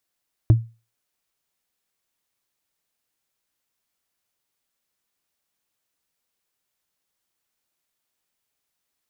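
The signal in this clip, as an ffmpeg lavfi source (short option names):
-f lavfi -i "aevalsrc='0.473*pow(10,-3*t/0.3)*sin(2*PI*114*t)+0.15*pow(10,-3*t/0.089)*sin(2*PI*314.3*t)+0.0473*pow(10,-3*t/0.04)*sin(2*PI*616.1*t)+0.015*pow(10,-3*t/0.022)*sin(2*PI*1018.4*t)+0.00473*pow(10,-3*t/0.013)*sin(2*PI*1520.8*t)':d=0.45:s=44100"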